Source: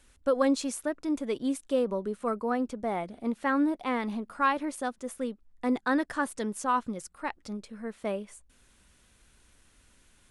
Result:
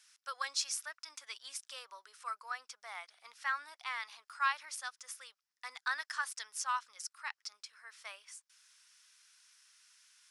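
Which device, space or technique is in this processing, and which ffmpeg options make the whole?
headphones lying on a table: -af "highpass=frequency=1200:width=0.5412,highpass=frequency=1200:width=1.3066,equalizer=frequency=5300:width_type=o:width=0.51:gain=12,volume=-2.5dB"

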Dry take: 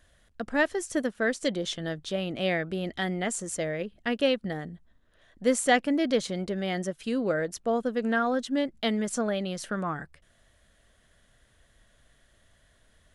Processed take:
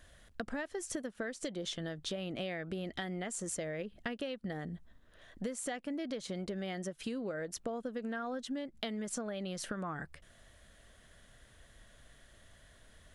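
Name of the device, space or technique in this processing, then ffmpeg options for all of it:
serial compression, leveller first: -af "acompressor=threshold=-31dB:ratio=2.5,acompressor=threshold=-39dB:ratio=6,volume=3dB"

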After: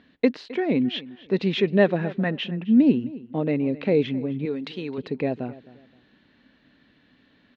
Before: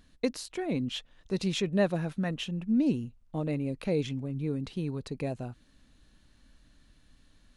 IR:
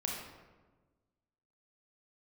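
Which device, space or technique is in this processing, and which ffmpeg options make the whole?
kitchen radio: -filter_complex "[0:a]asettb=1/sr,asplit=3[link_01][link_02][link_03];[link_01]atrim=end=4.454[link_04];[link_02]atrim=start=4.45:end=4.98,asetpts=PTS-STARTPTS,afade=type=in:duration=0.004:curve=qsin,afade=type=out:start_time=0.526:duration=0.004:curve=qsin,aemphasis=mode=production:type=riaa[link_05];[link_03]atrim=start=4.976[link_06];[link_04][link_05]acrossfade=duration=0.004:curve1=hsin:curve2=qsin[link_07];[link_07][link_06]acrossfade=duration=0.004:curve1=qsin:curve2=hsin,highpass=170,equalizer=frequency=250:width_type=q:width=4:gain=4,equalizer=frequency=420:width_type=q:width=4:gain=4,equalizer=frequency=1200:width_type=q:width=4:gain=-3,equalizer=frequency=1900:width_type=q:width=4:gain=4,lowpass=frequency=3600:width=0.5412,lowpass=frequency=3600:width=1.3066,asplit=2[link_08][link_09];[link_09]adelay=263,lowpass=frequency=4100:poles=1,volume=-18.5dB,asplit=2[link_10][link_11];[link_11]adelay=263,lowpass=frequency=4100:poles=1,volume=0.27[link_12];[link_08][link_10][link_12]amix=inputs=3:normalize=0,volume=7dB"

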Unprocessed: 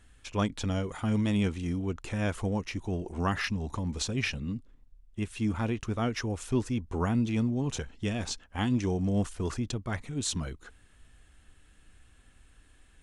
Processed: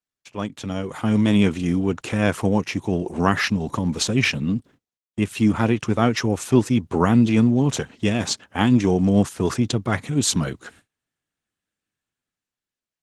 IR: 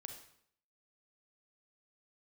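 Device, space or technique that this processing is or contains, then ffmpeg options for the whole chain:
video call: -af "highpass=frequency=110:width=0.5412,highpass=frequency=110:width=1.3066,dynaudnorm=framelen=170:gausssize=11:maxgain=13.5dB,agate=range=-34dB:threshold=-46dB:ratio=16:detection=peak" -ar 48000 -c:a libopus -b:a 16k

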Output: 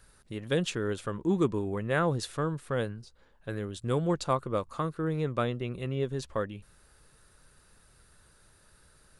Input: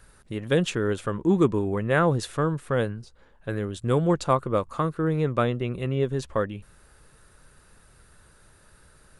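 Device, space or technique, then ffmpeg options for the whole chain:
presence and air boost: -af "equalizer=frequency=4500:width_type=o:width=1:gain=4,highshelf=frequency=9100:gain=4.5,volume=-6dB"

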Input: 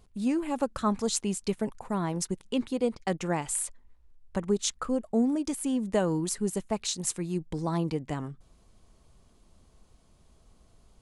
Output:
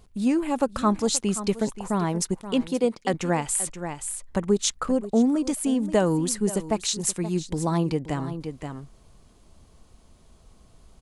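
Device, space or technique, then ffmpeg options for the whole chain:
ducked delay: -filter_complex "[0:a]asettb=1/sr,asplit=3[link_01][link_02][link_03];[link_01]atrim=end=2.684[link_04];[link_02]atrim=start=2.68:end=3.14,asetpts=PTS-STARTPTS,afade=type=in:duration=0.004:curve=qsin,afade=type=out:start_time=0.456:duration=0.004:curve=qsin,highpass=180[link_05];[link_03]atrim=start=3.136[link_06];[link_04][link_05]acrossfade=duration=0.004:curve1=hsin:curve2=qsin[link_07];[link_07][link_06]acrossfade=duration=0.004:curve1=qsin:curve2=hsin,asplit=3[link_08][link_09][link_10];[link_09]adelay=527,volume=-6.5dB[link_11];[link_10]apad=whole_len=509000[link_12];[link_11][link_12]sidechaincompress=threshold=-33dB:ratio=8:attack=7.7:release=501[link_13];[link_08][link_13]amix=inputs=2:normalize=0,volume=5dB"

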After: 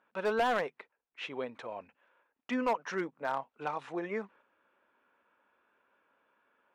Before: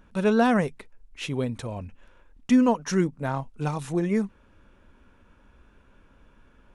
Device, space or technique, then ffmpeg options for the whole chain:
walkie-talkie: -af "highpass=580,lowpass=2400,asoftclip=type=hard:threshold=-22.5dB,agate=range=-6dB:threshold=-58dB:ratio=16:detection=peak,volume=-1dB"

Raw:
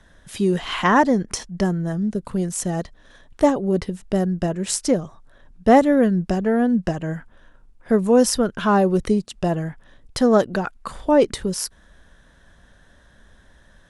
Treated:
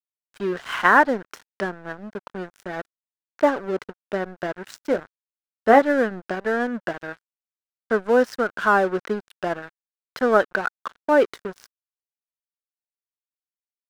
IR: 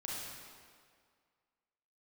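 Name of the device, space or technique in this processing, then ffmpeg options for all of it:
pocket radio on a weak battery: -filter_complex "[0:a]asettb=1/sr,asplit=3[link_01][link_02][link_03];[link_01]atrim=end=4.904[link_04];[link_02]atrim=start=4.9:end=5.82,asetpts=PTS-STARTPTS,afade=type=in:duration=0.004:curve=qsin,afade=type=out:start_time=0.916:duration=0.004:curve=qsin,asplit=2[link_05][link_06];[link_06]adelay=18,volume=-9dB[link_07];[link_05][link_07]amix=inputs=2:normalize=0,atrim=end_sample=40572[link_08];[link_03]atrim=start=5.816[link_09];[link_04][link_08]acrossfade=duration=0.004:curve1=hsin:curve2=qsin[link_10];[link_10][link_09]acrossfade=duration=0.004:curve1=qsin:curve2=hsin,highpass=350,lowpass=3200,aeval=exprs='sgn(val(0))*max(abs(val(0))-0.0178,0)':channel_layout=same,equalizer=frequency=1500:width_type=o:width=0.48:gain=10"

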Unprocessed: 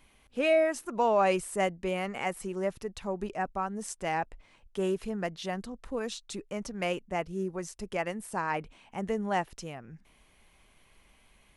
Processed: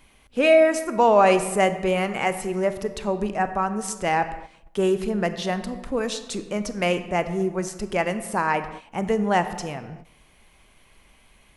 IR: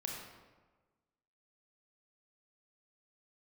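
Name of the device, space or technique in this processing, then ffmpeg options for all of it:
keyed gated reverb: -filter_complex "[0:a]asplit=3[link_01][link_02][link_03];[1:a]atrim=start_sample=2205[link_04];[link_02][link_04]afir=irnorm=-1:irlink=0[link_05];[link_03]apad=whole_len=510201[link_06];[link_05][link_06]sidechaingate=range=-14dB:threshold=-52dB:ratio=16:detection=peak,volume=-5dB[link_07];[link_01][link_07]amix=inputs=2:normalize=0,volume=5.5dB"

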